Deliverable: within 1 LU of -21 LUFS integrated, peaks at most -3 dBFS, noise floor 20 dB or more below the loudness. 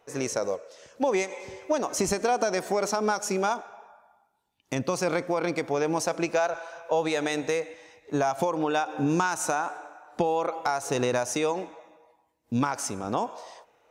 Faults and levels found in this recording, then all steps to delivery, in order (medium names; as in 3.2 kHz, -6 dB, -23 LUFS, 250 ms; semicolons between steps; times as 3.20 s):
loudness -28.0 LUFS; peak level -11.0 dBFS; loudness target -21.0 LUFS
-> trim +7 dB